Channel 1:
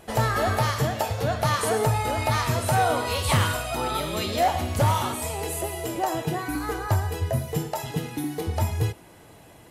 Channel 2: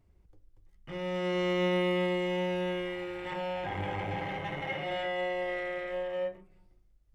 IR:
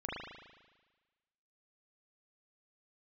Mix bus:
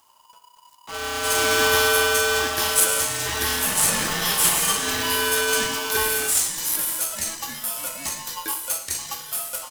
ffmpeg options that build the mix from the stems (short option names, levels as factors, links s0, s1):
-filter_complex "[0:a]asplit=2[s0][s1];[s1]afreqshift=-1.2[s2];[s0][s2]amix=inputs=2:normalize=1,adelay=1150,volume=0.422[s3];[1:a]equalizer=f=3100:w=1.6:g=-6.5,volume=1.41,asplit=2[s4][s5];[s5]volume=0.376[s6];[2:a]atrim=start_sample=2205[s7];[s6][s7]afir=irnorm=-1:irlink=0[s8];[s3][s4][s8]amix=inputs=3:normalize=0,equalizer=f=2600:t=o:w=1.4:g=10.5,aexciter=amount=8.2:drive=7.5:freq=4500,aeval=exprs='val(0)*sgn(sin(2*PI*980*n/s))':c=same"